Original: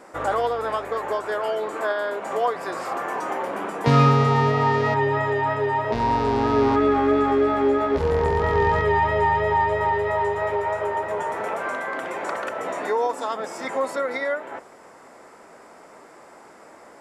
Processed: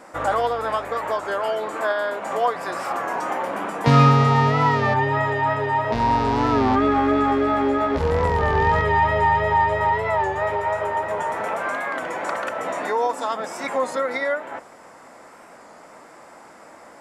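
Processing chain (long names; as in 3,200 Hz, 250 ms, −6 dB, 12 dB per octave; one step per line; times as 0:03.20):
parametric band 400 Hz −6.5 dB 0.38 octaves
wow of a warped record 33 1/3 rpm, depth 100 cents
level +2.5 dB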